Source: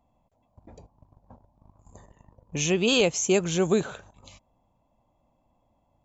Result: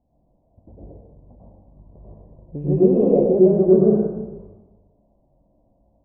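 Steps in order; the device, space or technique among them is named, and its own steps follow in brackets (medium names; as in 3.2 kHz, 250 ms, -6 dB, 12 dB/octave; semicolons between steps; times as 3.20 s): next room (low-pass 640 Hz 24 dB/octave; reverberation RT60 1.0 s, pre-delay 91 ms, DRR -7.5 dB); trim +1 dB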